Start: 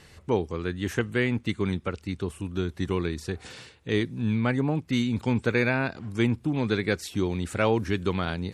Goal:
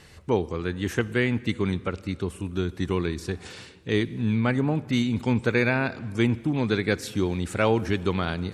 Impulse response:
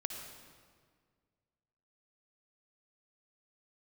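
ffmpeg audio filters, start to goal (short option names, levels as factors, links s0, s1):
-filter_complex "[0:a]asplit=2[s0][s1];[1:a]atrim=start_sample=2205,asetrate=42336,aresample=44100[s2];[s1][s2]afir=irnorm=-1:irlink=0,volume=0.211[s3];[s0][s3]amix=inputs=2:normalize=0"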